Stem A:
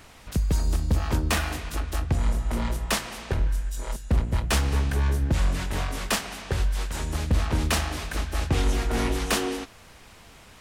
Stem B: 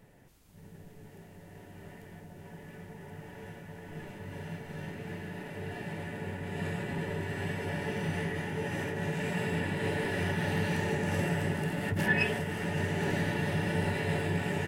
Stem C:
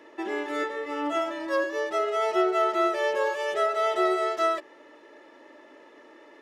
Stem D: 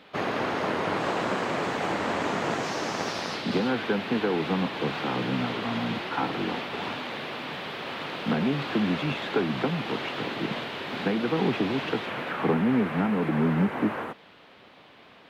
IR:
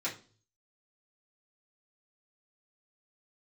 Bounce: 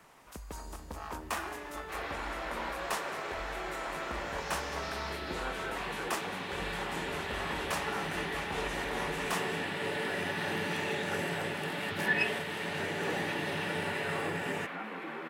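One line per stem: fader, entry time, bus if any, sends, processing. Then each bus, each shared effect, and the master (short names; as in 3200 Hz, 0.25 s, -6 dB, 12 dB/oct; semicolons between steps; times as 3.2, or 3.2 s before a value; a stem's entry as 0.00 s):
-11.0 dB, 0.00 s, no bus, no send, graphic EQ 125/1000/4000 Hz -12/+8/-4 dB
-0.5 dB, 0.00 s, no bus, no send, low shelf 120 Hz -9 dB
-7.5 dB, 1.20 s, bus A, no send, dry
-9.5 dB, 1.75 s, bus A, send -3.5 dB, HPF 740 Hz 6 dB/oct
bus A: 0.0 dB, limiter -36 dBFS, peak gain reduction 15.5 dB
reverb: on, RT60 0.40 s, pre-delay 3 ms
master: low shelf 170 Hz -11 dB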